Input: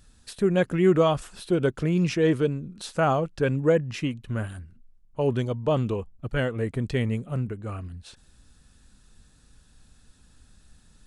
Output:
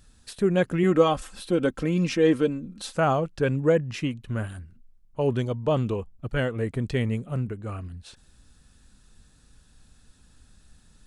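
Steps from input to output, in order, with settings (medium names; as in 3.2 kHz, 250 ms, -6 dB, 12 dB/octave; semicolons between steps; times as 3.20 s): 0.83–2.95 s: comb 3.8 ms, depth 57%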